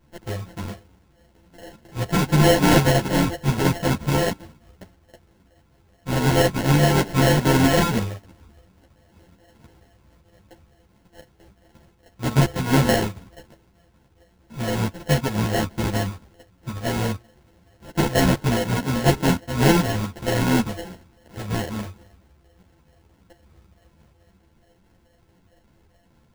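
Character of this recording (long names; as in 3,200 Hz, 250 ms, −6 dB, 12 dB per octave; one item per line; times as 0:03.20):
a buzz of ramps at a fixed pitch in blocks of 64 samples
phaser sweep stages 8, 2.3 Hz, lowest notch 370–1,000 Hz
aliases and images of a low sample rate 1,200 Hz, jitter 0%
a shimmering, thickened sound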